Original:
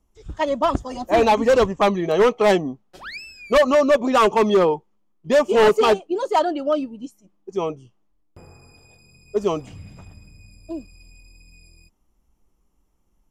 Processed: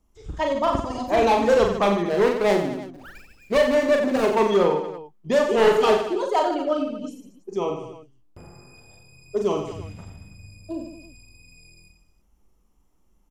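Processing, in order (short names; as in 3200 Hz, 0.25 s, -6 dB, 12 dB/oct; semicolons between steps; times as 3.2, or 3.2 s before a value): 2.07–4.26 median filter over 41 samples; reverse bouncing-ball echo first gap 40 ms, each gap 1.25×, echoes 5; in parallel at -2 dB: compressor, threshold -27 dBFS, peak gain reduction 17.5 dB; on the sum: gain -5.5 dB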